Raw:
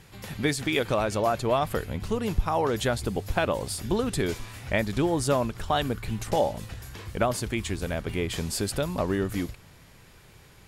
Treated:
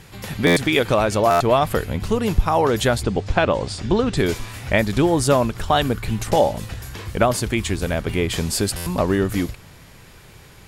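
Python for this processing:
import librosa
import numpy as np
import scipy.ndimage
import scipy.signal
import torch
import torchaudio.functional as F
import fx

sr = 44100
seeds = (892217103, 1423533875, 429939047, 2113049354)

y = fx.bessel_lowpass(x, sr, hz=5200.0, order=8, at=(3.03, 4.17))
y = fx.buffer_glitch(y, sr, at_s=(0.46, 1.3, 8.76), block=512, repeats=8)
y = F.gain(torch.from_numpy(y), 7.5).numpy()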